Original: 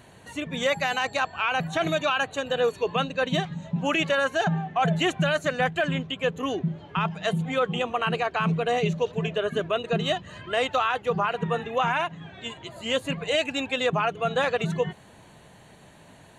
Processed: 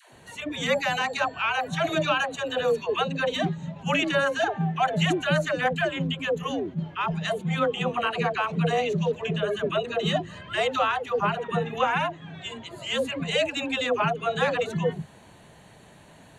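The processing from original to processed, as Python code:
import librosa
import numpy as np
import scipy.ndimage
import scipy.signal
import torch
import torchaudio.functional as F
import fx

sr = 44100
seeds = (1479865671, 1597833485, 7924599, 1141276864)

y = fx.dispersion(x, sr, late='lows', ms=139.0, hz=410.0)
y = fx.attack_slew(y, sr, db_per_s=340.0)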